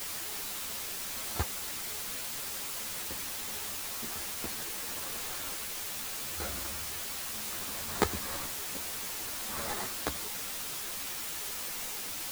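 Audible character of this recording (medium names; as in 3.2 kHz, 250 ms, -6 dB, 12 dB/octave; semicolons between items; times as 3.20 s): aliases and images of a low sample rate 2.8 kHz, jitter 0%; tremolo saw up 0.71 Hz, depth 70%; a quantiser's noise floor 6-bit, dither triangular; a shimmering, thickened sound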